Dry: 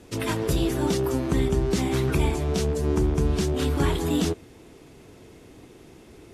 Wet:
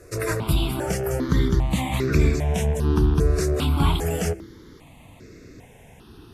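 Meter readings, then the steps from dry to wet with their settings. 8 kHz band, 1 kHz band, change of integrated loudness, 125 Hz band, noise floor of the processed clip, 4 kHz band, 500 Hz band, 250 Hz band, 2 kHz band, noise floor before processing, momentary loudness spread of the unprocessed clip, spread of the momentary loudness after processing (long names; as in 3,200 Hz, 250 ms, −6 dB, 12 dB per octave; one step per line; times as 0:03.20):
+1.0 dB, +2.0 dB, +2.0 dB, +3.5 dB, −49 dBFS, +1.0 dB, −0.5 dB, −0.5 dB, +3.0 dB, −49 dBFS, 2 LU, 6 LU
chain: hum removal 66.23 Hz, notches 6
step-sequenced phaser 2.5 Hz 860–3,100 Hz
level +5.5 dB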